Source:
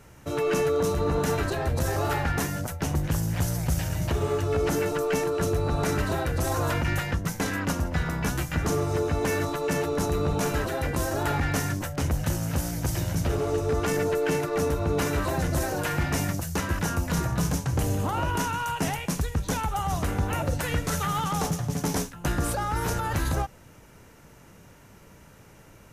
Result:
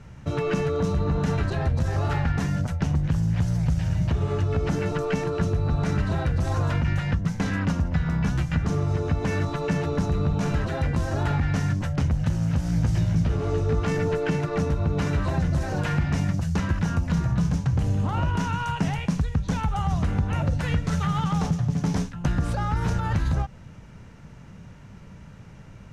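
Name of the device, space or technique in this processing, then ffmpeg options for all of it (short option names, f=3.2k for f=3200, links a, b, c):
jukebox: -filter_complex "[0:a]lowpass=5.2k,lowshelf=f=250:t=q:w=1.5:g=7,acompressor=threshold=-22dB:ratio=3,asettb=1/sr,asplit=3[a][b][c];[a]atrim=end=12.674[d];[b]atrim=start=12.67:end=14.17,asetpts=PTS-STARTPTS,afade=t=in:d=0.004:c=qsin,afade=t=out:st=1.496:d=0.004:c=qsin,asplit=2[e][f];[f]adelay=18,volume=-8dB[g];[e][g]amix=inputs=2:normalize=0,atrim=end_sample=66150[h];[c]atrim=start=14.166[i];[d][h]acrossfade=d=0.004:c1=hsin:c2=qsin[j];[j][i]acrossfade=d=0.004:c1=qsin:c2=hsin,volume=1dB"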